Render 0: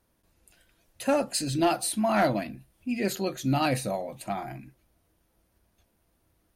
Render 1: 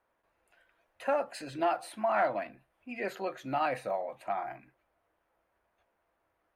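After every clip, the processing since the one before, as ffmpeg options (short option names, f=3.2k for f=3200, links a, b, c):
-filter_complex "[0:a]acrossover=split=490 2300:gain=0.1 1 0.0794[a][b][c];[a][b][c]amix=inputs=3:normalize=0,acompressor=threshold=-33dB:ratio=1.5,volume=2.5dB"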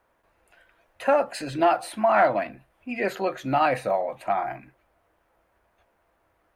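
-af "lowshelf=f=150:g=5.5,volume=8.5dB"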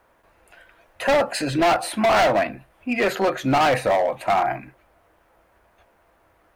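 -af "volume=23dB,asoftclip=hard,volume=-23dB,volume=8dB"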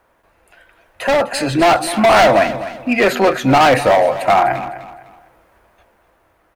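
-af "dynaudnorm=f=550:g=5:m=6dB,aecho=1:1:253|506|759:0.211|0.0676|0.0216,volume=1.5dB"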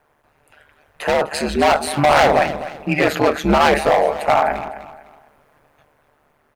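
-af "aeval=exprs='val(0)*sin(2*PI*74*n/s)':c=same"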